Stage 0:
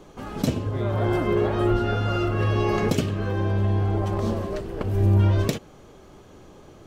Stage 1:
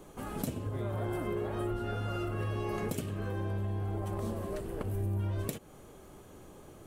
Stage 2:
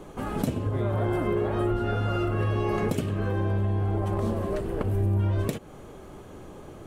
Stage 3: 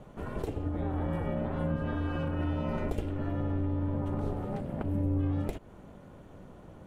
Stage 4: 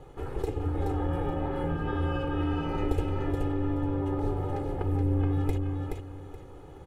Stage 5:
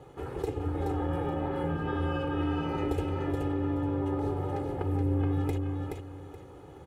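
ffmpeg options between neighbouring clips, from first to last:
-af "highshelf=f=7300:t=q:w=1.5:g=10,acompressor=threshold=0.0355:ratio=3,volume=0.596"
-af "lowpass=f=3500:p=1,volume=2.66"
-af "aeval=exprs='val(0)*sin(2*PI*190*n/s)':c=same,bass=f=250:g=5,treble=f=4000:g=-6,volume=0.531"
-af "aecho=1:1:2.4:0.85,aecho=1:1:425|850|1275:0.631|0.151|0.0363"
-af "highpass=80"

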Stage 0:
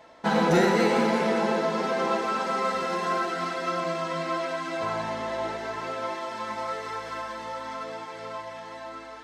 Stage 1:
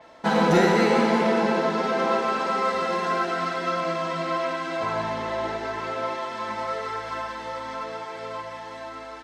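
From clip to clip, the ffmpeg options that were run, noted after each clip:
-filter_complex "[0:a]asplit=2[s0][s1];[s1]aecho=0:1:52.48|145.8:0.251|0.316[s2];[s0][s2]amix=inputs=2:normalize=0,adynamicequalizer=threshold=0.00355:dfrequency=6000:dqfactor=0.7:tfrequency=6000:tqfactor=0.7:attack=5:release=100:ratio=0.375:range=3:mode=cutabove:tftype=highshelf,volume=1.26"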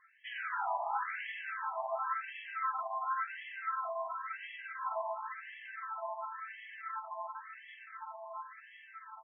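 -af "afftfilt=real='re*between(b*sr/1024,840*pow(2400/840,0.5+0.5*sin(2*PI*0.94*pts/sr))/1.41,840*pow(2400/840,0.5+0.5*sin(2*PI*0.94*pts/sr))*1.41)':imag='im*between(b*sr/1024,840*pow(2400/840,0.5+0.5*sin(2*PI*0.94*pts/sr))/1.41,840*pow(2400/840,0.5+0.5*sin(2*PI*0.94*pts/sr))*1.41)':win_size=1024:overlap=0.75,volume=0.422"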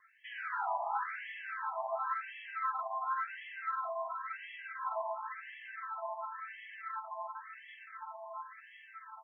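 -filter_complex "[0:a]acrossover=split=1000|1200|1600[s0][s1][s2][s3];[s2]aeval=exprs='0.0158*(cos(1*acos(clip(val(0)/0.0158,-1,1)))-cos(1*PI/2))+0.000398*(cos(2*acos(clip(val(0)/0.0158,-1,1)))-cos(2*PI/2))+0.000178*(cos(7*acos(clip(val(0)/0.0158,-1,1)))-cos(7*PI/2))':c=same[s4];[s3]alimiter=level_in=9.44:limit=0.0631:level=0:latency=1:release=12,volume=0.106[s5];[s0][s1][s4][s5]amix=inputs=4:normalize=0"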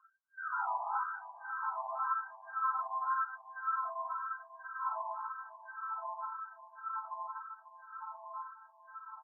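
-af "lowshelf=f=770:t=q:w=1.5:g=-9,afftfilt=real='re*between(b*sr/4096,360,1600)':imag='im*between(b*sr/4096,360,1600)':win_size=4096:overlap=0.75,aecho=1:1:543|1086|1629|2172|2715:0.2|0.0958|0.046|0.0221|0.0106"

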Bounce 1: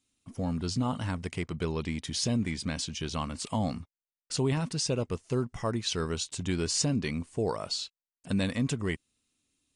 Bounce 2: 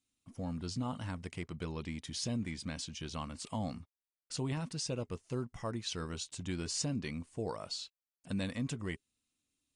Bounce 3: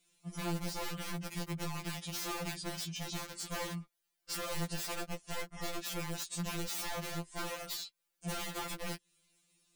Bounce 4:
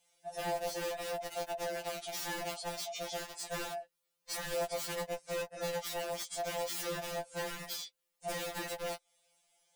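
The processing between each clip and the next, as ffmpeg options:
-af "bandreject=f=410:w=12,volume=0.422"
-af "aeval=exprs='(mod(50.1*val(0)+1,2)-1)/50.1':c=same,acompressor=threshold=0.00316:ratio=6,afftfilt=real='re*2.83*eq(mod(b,8),0)':imag='im*2.83*eq(mod(b,8),0)':win_size=2048:overlap=0.75,volume=5.31"
-af "afftfilt=real='real(if(lt(b,1008),b+24*(1-2*mod(floor(b/24),2)),b),0)':imag='imag(if(lt(b,1008),b+24*(1-2*mod(floor(b/24),2)),b),0)':win_size=2048:overlap=0.75"

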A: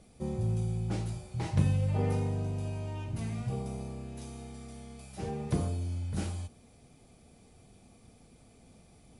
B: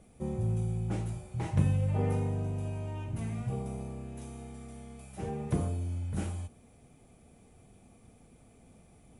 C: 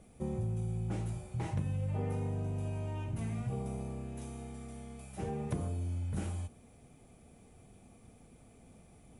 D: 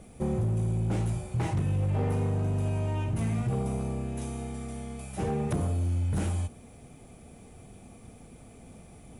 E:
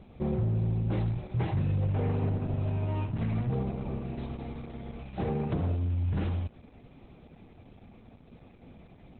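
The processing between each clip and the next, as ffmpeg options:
-af "equalizer=f=4600:t=o:w=0.77:g=-10"
-af "acompressor=threshold=0.0251:ratio=4"
-af "asoftclip=type=hard:threshold=0.0251,volume=2.66"
-ar 48000 -c:a libopus -b:a 8k

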